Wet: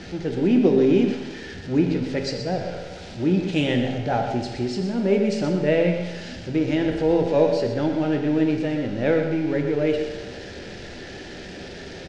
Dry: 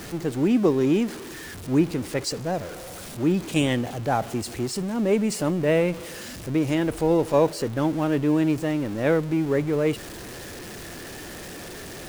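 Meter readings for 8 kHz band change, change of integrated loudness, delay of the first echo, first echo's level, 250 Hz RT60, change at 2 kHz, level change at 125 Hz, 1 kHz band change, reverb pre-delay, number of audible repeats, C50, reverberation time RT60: n/a, +1.5 dB, 0.122 s, -9.5 dB, 1.3 s, +1.0 dB, +1.0 dB, -0.5 dB, 5 ms, 1, 4.5 dB, 1.3 s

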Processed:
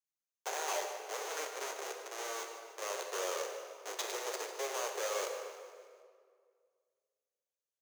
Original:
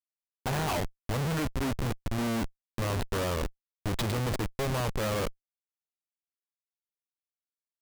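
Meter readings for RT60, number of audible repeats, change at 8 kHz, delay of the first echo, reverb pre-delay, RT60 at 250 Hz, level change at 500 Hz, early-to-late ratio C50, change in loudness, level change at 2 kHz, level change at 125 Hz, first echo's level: 2.0 s, 5, +2.0 dB, 0.15 s, 10 ms, 2.3 s, -4.5 dB, 4.5 dB, -7.0 dB, -4.5 dB, under -40 dB, -13.5 dB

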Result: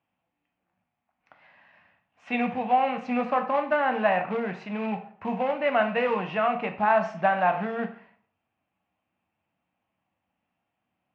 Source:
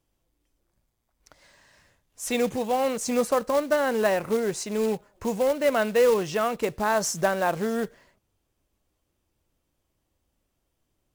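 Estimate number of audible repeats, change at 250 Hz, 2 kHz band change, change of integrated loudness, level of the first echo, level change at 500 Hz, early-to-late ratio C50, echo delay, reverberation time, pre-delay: none, -1.0 dB, +2.0 dB, -1.0 dB, none, -3.5 dB, 11.0 dB, none, 0.50 s, 10 ms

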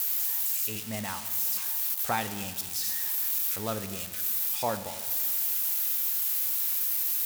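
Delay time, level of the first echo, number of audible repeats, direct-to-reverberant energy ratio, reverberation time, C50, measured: none, none, none, 10.0 dB, 1.8 s, 11.5 dB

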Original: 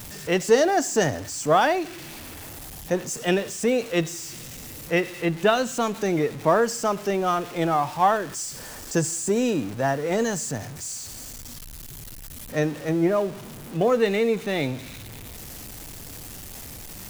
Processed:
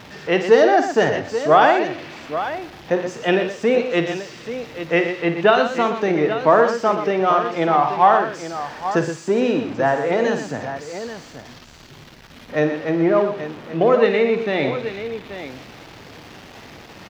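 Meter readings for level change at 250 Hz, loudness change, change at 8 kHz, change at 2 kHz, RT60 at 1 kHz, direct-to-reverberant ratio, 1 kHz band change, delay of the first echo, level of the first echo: +3.5 dB, +5.0 dB, -11.0 dB, +6.0 dB, none, none, +7.0 dB, 53 ms, -9.5 dB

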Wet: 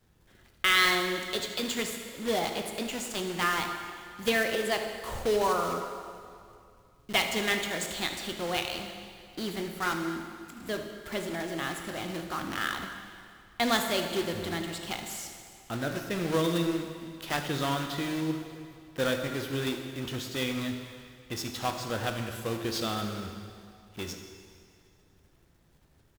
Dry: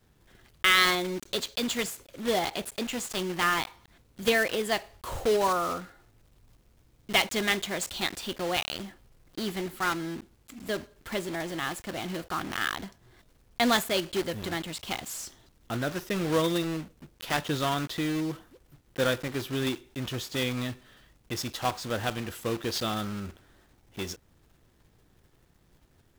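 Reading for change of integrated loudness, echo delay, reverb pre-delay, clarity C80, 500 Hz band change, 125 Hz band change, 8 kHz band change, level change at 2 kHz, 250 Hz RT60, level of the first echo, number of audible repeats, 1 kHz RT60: -1.5 dB, 76 ms, 15 ms, 7.0 dB, -1.0 dB, -1.0 dB, -1.5 dB, -1.0 dB, 2.3 s, -15.0 dB, 1, 2.4 s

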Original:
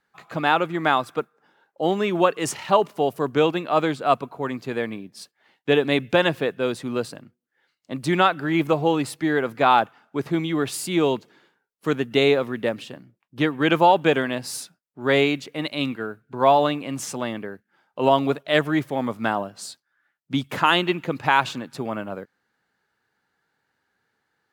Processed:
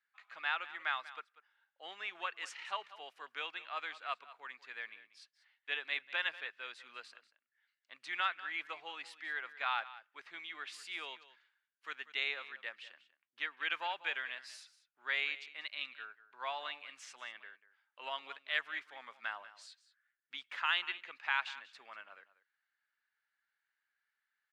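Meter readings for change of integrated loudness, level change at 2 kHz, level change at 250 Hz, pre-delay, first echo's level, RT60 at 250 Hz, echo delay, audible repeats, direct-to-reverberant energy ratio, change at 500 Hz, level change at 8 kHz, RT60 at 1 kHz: -17.0 dB, -10.5 dB, under -40 dB, none, -16.5 dB, none, 0.191 s, 1, none, -32.0 dB, -22.5 dB, none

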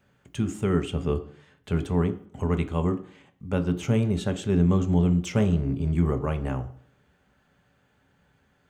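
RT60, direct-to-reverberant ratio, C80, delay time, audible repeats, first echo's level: 0.55 s, 7.0 dB, 17.5 dB, none, none, none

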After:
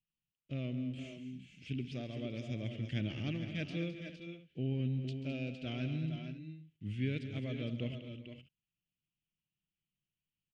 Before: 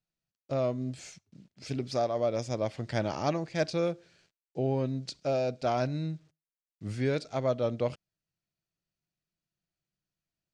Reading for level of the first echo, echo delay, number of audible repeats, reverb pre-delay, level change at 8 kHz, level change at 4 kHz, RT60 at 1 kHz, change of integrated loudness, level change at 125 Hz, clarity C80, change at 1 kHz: -14.5 dB, 0.137 s, 5, none, under -15 dB, -4.5 dB, none, -8.0 dB, -2.5 dB, none, -22.5 dB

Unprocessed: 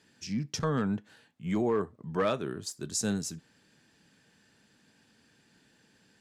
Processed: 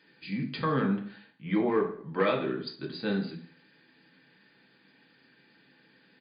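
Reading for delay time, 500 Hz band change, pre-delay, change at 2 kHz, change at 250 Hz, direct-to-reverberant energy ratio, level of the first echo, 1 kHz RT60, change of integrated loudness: 0.166 s, +2.0 dB, 3 ms, +5.0 dB, +2.0 dB, 0.5 dB, -22.0 dB, 0.50 s, +1.5 dB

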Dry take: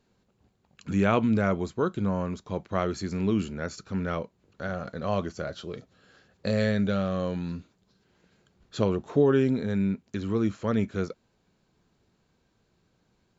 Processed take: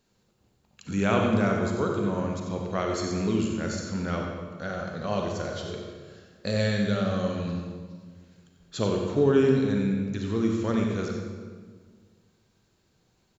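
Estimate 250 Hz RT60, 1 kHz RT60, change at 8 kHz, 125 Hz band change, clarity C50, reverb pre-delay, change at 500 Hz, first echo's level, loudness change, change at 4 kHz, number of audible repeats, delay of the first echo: 2.0 s, 1.5 s, n/a, +1.0 dB, 1.0 dB, 35 ms, +1.5 dB, -9.0 dB, +1.0 dB, +4.5 dB, 1, 92 ms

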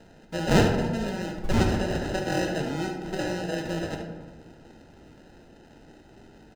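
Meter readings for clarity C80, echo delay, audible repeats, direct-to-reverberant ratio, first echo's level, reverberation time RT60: 7.0 dB, 72 ms, 1, 1.5 dB, -8.5 dB, 1.4 s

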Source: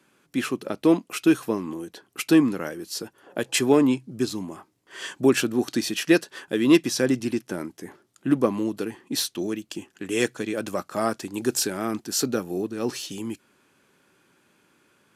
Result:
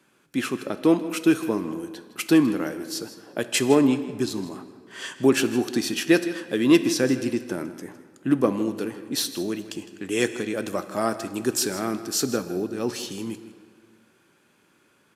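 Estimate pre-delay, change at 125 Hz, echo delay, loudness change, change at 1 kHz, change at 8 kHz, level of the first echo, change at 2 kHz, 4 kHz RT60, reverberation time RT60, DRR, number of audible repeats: 11 ms, +0.5 dB, 0.159 s, +0.5 dB, +0.5 dB, +0.5 dB, -15.5 dB, +0.5 dB, 1.4 s, 2.1 s, 10.5 dB, 1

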